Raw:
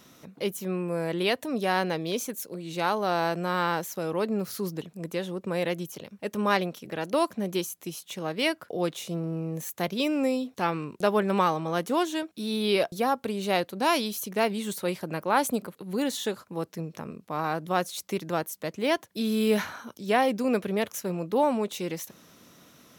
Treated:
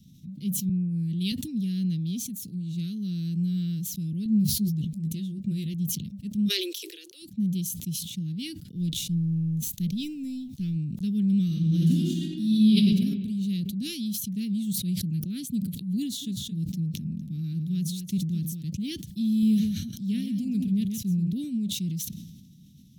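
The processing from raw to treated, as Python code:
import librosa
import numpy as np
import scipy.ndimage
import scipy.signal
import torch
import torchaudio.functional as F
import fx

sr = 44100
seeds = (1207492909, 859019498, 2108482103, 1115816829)

y = fx.band_widen(x, sr, depth_pct=100, at=(0.69, 1.32))
y = fx.doubler(y, sr, ms=14.0, db=-4.0, at=(4.24, 5.74))
y = fx.steep_highpass(y, sr, hz=350.0, slope=96, at=(6.47, 7.22), fade=0.02)
y = fx.law_mismatch(y, sr, coded='A', at=(8.76, 10.76))
y = fx.reverb_throw(y, sr, start_s=11.45, length_s=1.45, rt60_s=1.6, drr_db=-5.5)
y = fx.echo_single(y, sr, ms=223, db=-11.0, at=(16.21, 18.61), fade=0.02)
y = fx.echo_single(y, sr, ms=133, db=-8.0, at=(19.29, 21.33))
y = scipy.signal.sosfilt(scipy.signal.cheby1(3, 1.0, [190.0, 3400.0], 'bandstop', fs=sr, output='sos'), y)
y = fx.tilt_shelf(y, sr, db=9.5, hz=940.0)
y = fx.sustainer(y, sr, db_per_s=44.0)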